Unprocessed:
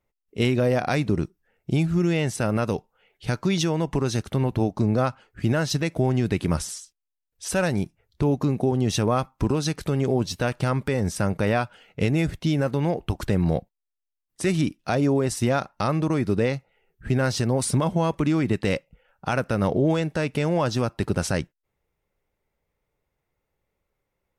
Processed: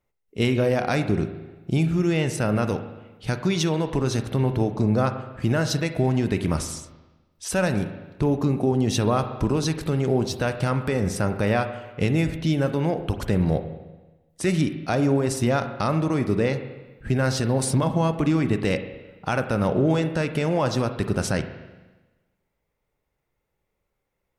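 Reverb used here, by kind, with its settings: spring tank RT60 1.2 s, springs 38/43 ms, chirp 30 ms, DRR 8.5 dB

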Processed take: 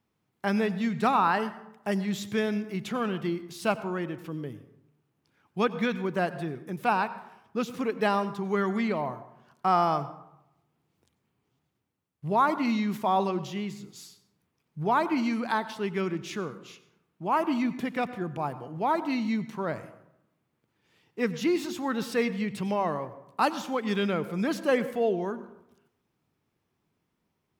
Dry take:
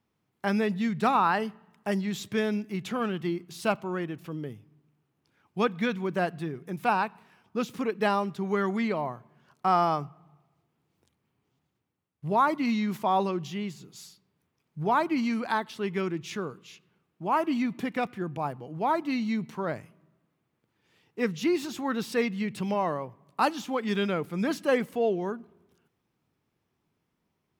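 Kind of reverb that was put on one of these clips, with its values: plate-style reverb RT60 0.78 s, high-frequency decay 0.5×, pre-delay 80 ms, DRR 14 dB

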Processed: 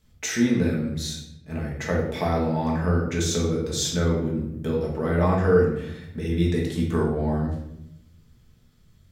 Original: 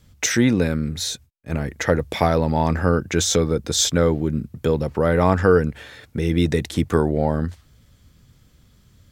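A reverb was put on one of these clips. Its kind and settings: simulated room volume 230 m³, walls mixed, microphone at 1.5 m; trim -10.5 dB

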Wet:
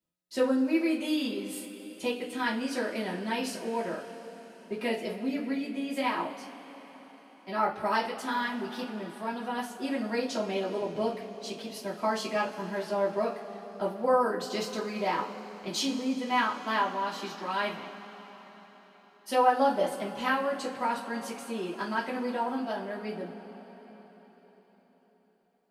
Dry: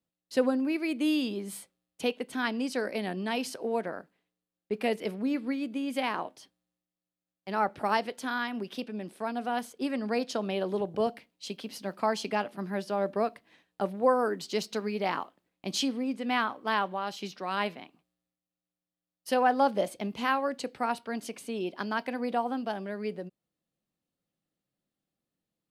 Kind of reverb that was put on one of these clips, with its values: two-slope reverb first 0.25 s, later 4.8 s, from -22 dB, DRR -6.5 dB; trim -6.5 dB

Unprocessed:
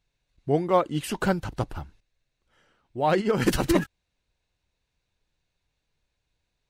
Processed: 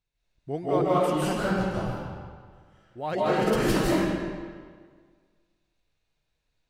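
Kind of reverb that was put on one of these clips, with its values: algorithmic reverb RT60 1.7 s, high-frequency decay 0.8×, pre-delay 120 ms, DRR -9 dB; trim -9 dB

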